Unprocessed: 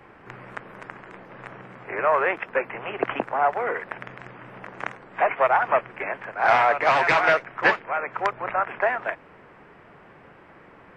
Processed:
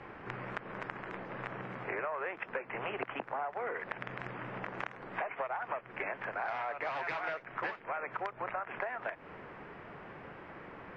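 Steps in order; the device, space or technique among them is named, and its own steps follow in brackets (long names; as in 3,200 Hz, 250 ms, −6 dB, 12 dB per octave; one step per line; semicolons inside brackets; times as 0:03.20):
serial compression, peaks first (downward compressor 5 to 1, threshold −30 dBFS, peak gain reduction 15 dB; downward compressor 2.5 to 1, threshold −37 dBFS, peak gain reduction 8 dB)
low-pass filter 5,000 Hz 12 dB per octave
level +1 dB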